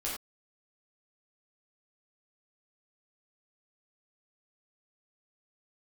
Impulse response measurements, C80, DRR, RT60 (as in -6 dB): 5.5 dB, -7.5 dB, no single decay rate